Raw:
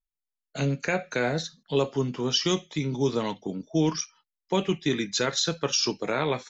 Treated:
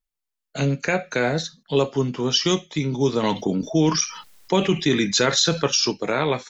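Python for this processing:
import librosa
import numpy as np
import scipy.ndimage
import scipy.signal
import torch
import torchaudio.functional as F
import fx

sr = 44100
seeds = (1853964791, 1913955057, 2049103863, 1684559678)

y = fx.env_flatten(x, sr, amount_pct=50, at=(3.23, 5.68))
y = F.gain(torch.from_numpy(y), 4.5).numpy()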